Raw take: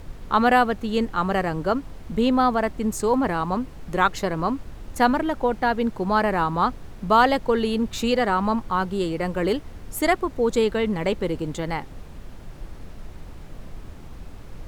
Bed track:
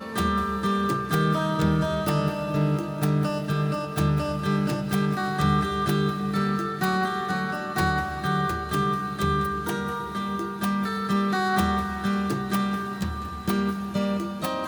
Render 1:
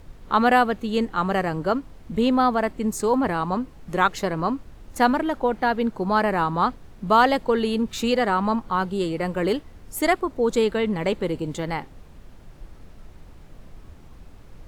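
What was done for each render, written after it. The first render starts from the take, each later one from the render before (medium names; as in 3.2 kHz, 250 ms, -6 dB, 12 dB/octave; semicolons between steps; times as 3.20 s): noise print and reduce 6 dB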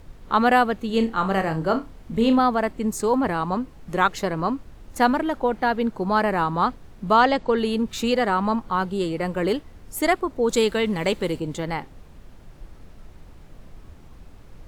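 0.87–2.39 s: flutter echo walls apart 5.3 m, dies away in 0.22 s; 7.13–7.58 s: low-pass 7.2 kHz 24 dB/octave; 10.49–11.39 s: treble shelf 2.6 kHz +8.5 dB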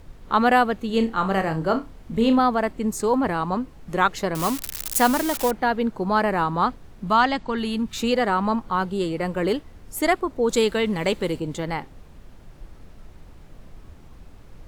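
4.35–5.51 s: zero-crossing glitches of -15.5 dBFS; 7.08–7.96 s: peaking EQ 490 Hz -9.5 dB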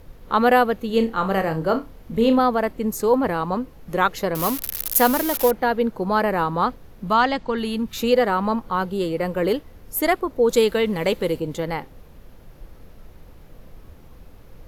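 graphic EQ with 31 bands 500 Hz +6 dB, 8 kHz -5 dB, 12.5 kHz +12 dB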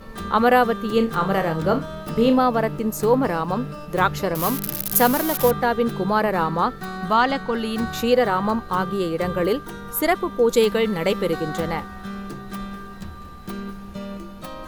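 add bed track -7.5 dB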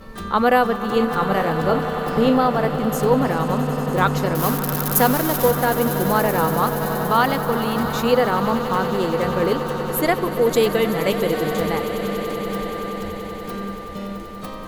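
echo with a slow build-up 95 ms, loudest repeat 8, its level -15.5 dB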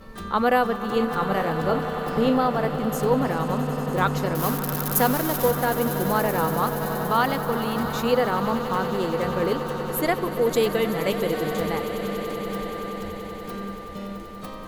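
trim -4 dB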